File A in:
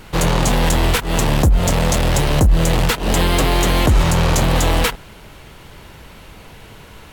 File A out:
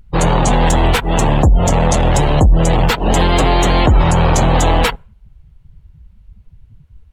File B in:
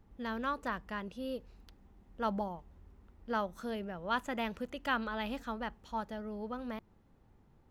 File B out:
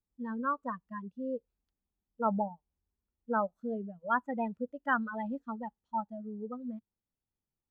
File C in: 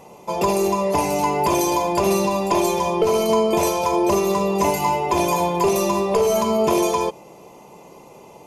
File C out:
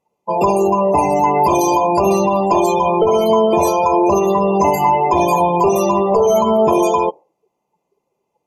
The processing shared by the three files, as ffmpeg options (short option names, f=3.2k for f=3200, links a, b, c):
-filter_complex "[0:a]afftdn=nr=35:nf=-26,adynamicequalizer=threshold=0.0141:dfrequency=790:dqfactor=2.7:tfrequency=790:tqfactor=2.7:attack=5:release=100:ratio=0.375:range=2.5:mode=boostabove:tftype=bell,asplit=2[a][b];[b]alimiter=limit=-12.5dB:level=0:latency=1:release=45,volume=0.5dB[c];[a][c]amix=inputs=2:normalize=0,volume=-1dB"